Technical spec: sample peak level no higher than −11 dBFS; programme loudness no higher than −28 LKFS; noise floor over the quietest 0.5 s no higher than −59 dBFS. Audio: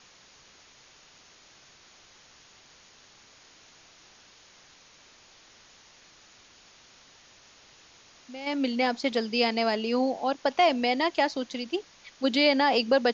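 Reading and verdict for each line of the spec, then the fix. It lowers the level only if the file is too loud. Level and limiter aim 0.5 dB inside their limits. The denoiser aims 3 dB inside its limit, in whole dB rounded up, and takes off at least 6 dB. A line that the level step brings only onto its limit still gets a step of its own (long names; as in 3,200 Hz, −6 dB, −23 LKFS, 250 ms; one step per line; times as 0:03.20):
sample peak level −10.0 dBFS: out of spec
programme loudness −26.0 LKFS: out of spec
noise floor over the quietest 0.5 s −56 dBFS: out of spec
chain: broadband denoise 6 dB, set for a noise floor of −56 dBFS
level −2.5 dB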